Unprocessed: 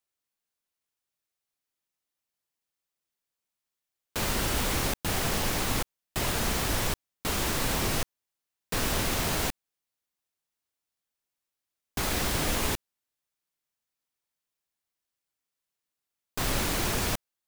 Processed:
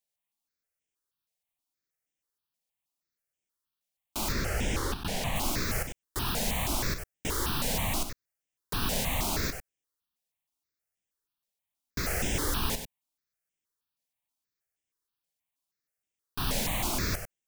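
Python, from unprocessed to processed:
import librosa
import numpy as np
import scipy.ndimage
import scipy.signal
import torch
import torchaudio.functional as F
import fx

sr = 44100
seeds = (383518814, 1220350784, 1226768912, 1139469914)

y = fx.high_shelf(x, sr, hz=8600.0, db=-10.5, at=(4.32, 5.36))
y = y + 10.0 ** (-8.5 / 20.0) * np.pad(y, (int(97 * sr / 1000.0), 0))[:len(y)]
y = fx.phaser_held(y, sr, hz=6.3, low_hz=330.0, high_hz=4300.0)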